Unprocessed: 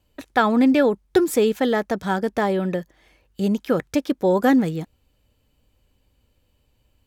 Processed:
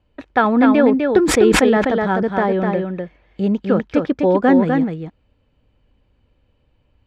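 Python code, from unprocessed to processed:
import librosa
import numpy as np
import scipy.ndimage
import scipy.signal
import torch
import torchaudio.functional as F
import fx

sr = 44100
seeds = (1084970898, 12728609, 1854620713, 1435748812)

p1 = scipy.signal.sosfilt(scipy.signal.butter(2, 2500.0, 'lowpass', fs=sr, output='sos'), x)
p2 = p1 + fx.echo_single(p1, sr, ms=251, db=-4.5, dry=0)
p3 = fx.sustainer(p2, sr, db_per_s=24.0, at=(1.19, 2.23))
y = F.gain(torch.from_numpy(p3), 3.0).numpy()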